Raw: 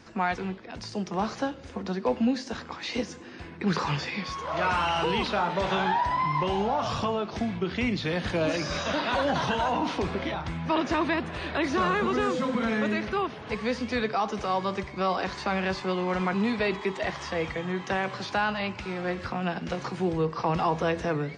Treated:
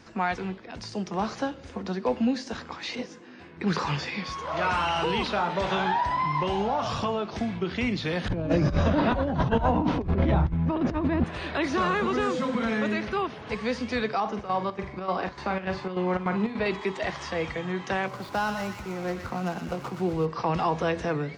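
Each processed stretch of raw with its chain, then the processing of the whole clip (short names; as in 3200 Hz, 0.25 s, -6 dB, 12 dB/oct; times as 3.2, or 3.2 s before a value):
2.95–3.57 HPF 140 Hz + high shelf 6900 Hz -9.5 dB + detuned doubles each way 18 cents
8.28–11.24 tilt -4.5 dB/oct + negative-ratio compressor -23 dBFS, ratio -0.5
14.2–16.66 high shelf 3400 Hz -11.5 dB + doubler 44 ms -8 dB + chopper 3.4 Hz, depth 60%, duty 70%
18.07–20.26 median filter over 15 samples + notch 1700 Hz, Q 10 + thin delay 0.121 s, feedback 48%, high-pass 1600 Hz, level -4 dB
whole clip: dry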